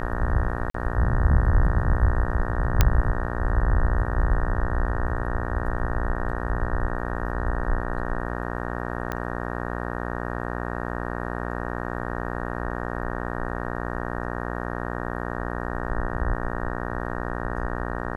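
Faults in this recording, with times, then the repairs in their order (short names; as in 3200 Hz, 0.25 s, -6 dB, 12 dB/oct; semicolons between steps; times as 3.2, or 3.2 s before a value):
buzz 60 Hz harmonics 31 -30 dBFS
0.7–0.74 gap 44 ms
2.81 pop -2 dBFS
9.12 pop -15 dBFS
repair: de-click; de-hum 60 Hz, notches 31; interpolate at 0.7, 44 ms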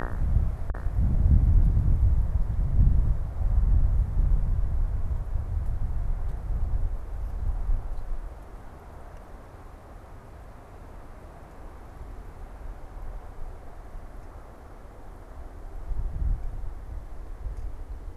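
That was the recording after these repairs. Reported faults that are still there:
none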